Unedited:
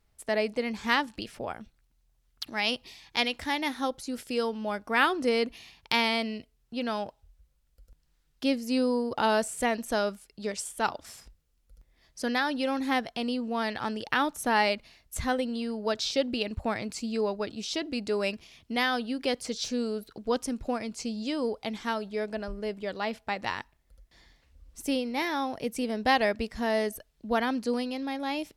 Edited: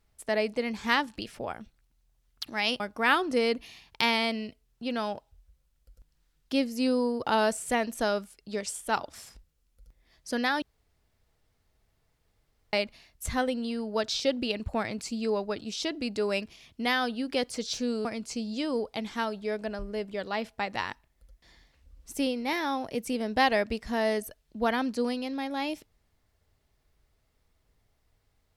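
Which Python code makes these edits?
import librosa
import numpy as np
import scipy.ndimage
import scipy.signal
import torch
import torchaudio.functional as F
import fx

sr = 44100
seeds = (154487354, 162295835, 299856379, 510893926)

y = fx.edit(x, sr, fx.cut(start_s=2.8, length_s=1.91),
    fx.room_tone_fill(start_s=12.53, length_s=2.11),
    fx.cut(start_s=19.96, length_s=0.78), tone=tone)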